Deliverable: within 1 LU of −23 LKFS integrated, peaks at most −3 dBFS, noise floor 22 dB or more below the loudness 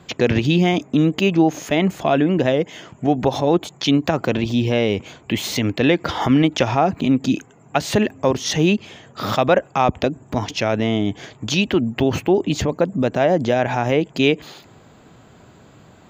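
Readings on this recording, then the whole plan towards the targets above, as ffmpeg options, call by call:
integrated loudness −19.5 LKFS; sample peak −3.0 dBFS; target loudness −23.0 LKFS
→ -af "volume=-3.5dB"

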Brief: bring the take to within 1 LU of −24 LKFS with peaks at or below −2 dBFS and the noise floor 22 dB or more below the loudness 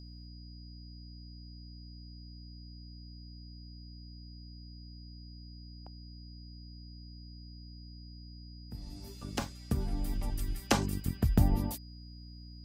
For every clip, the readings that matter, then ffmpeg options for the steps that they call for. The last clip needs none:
mains hum 60 Hz; hum harmonics up to 300 Hz; level of the hum −46 dBFS; interfering tone 4,900 Hz; level of the tone −56 dBFS; integrated loudness −34.0 LKFS; sample peak −11.5 dBFS; target loudness −24.0 LKFS
→ -af "bandreject=frequency=60:width_type=h:width=6,bandreject=frequency=120:width_type=h:width=6,bandreject=frequency=180:width_type=h:width=6,bandreject=frequency=240:width_type=h:width=6,bandreject=frequency=300:width_type=h:width=6"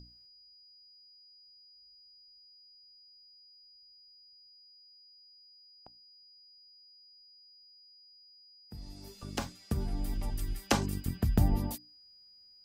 mains hum none found; interfering tone 4,900 Hz; level of the tone −56 dBFS
→ -af "bandreject=frequency=4900:width=30"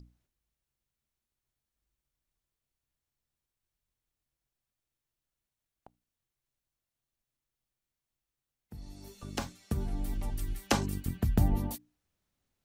interfering tone none found; integrated loudness −34.0 LKFS; sample peak −12.5 dBFS; target loudness −24.0 LKFS
→ -af "volume=10dB"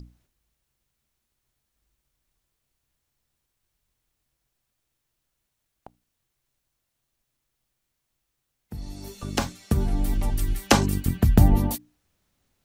integrated loudness −24.0 LKFS; sample peak −2.5 dBFS; background noise floor −79 dBFS

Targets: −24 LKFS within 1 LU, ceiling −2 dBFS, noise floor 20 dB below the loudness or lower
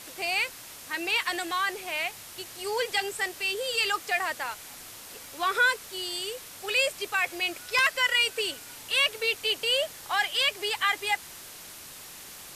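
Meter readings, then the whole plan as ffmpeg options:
background noise floor −45 dBFS; target noise floor −47 dBFS; integrated loudness −27.0 LKFS; sample peak −13.0 dBFS; target loudness −24.0 LKFS
→ -af "afftdn=noise_reduction=6:noise_floor=-45"
-af "volume=3dB"

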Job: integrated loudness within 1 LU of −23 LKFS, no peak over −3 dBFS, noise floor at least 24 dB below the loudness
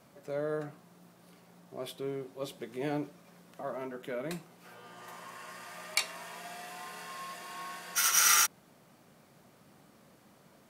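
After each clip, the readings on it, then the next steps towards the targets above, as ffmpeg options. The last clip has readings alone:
integrated loudness −32.0 LKFS; sample peak −11.0 dBFS; target loudness −23.0 LKFS
→ -af "volume=9dB,alimiter=limit=-3dB:level=0:latency=1"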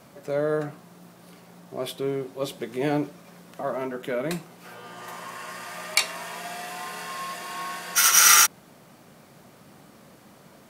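integrated loudness −23.0 LKFS; sample peak −3.0 dBFS; background noise floor −52 dBFS

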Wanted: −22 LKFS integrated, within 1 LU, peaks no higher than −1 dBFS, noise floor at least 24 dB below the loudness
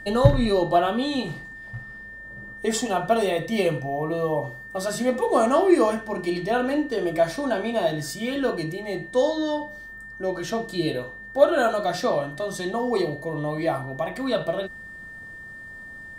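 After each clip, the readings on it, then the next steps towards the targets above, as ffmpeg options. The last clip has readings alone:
interfering tone 1,800 Hz; level of the tone −38 dBFS; integrated loudness −24.5 LKFS; sample peak −1.5 dBFS; target loudness −22.0 LKFS
→ -af "bandreject=frequency=1800:width=30"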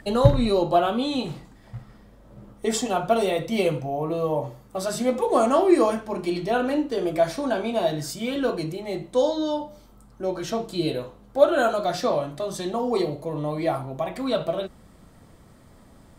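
interfering tone none found; integrated loudness −24.5 LKFS; sample peak −1.5 dBFS; target loudness −22.0 LKFS
→ -af "volume=2.5dB,alimiter=limit=-1dB:level=0:latency=1"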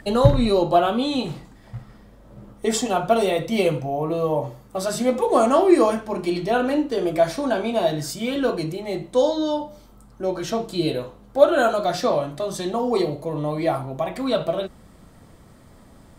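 integrated loudness −22.0 LKFS; sample peak −1.0 dBFS; background noise floor −49 dBFS

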